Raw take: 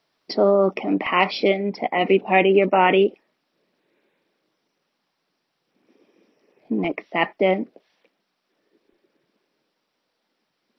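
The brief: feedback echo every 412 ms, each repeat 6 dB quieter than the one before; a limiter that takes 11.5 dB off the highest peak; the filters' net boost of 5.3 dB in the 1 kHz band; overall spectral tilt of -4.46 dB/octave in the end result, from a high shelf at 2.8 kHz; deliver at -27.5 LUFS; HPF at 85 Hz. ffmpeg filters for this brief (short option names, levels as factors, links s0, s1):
-af "highpass=85,equalizer=f=1000:t=o:g=8,highshelf=f=2800:g=-8.5,alimiter=limit=0.224:level=0:latency=1,aecho=1:1:412|824|1236|1648|2060|2472:0.501|0.251|0.125|0.0626|0.0313|0.0157,volume=0.631"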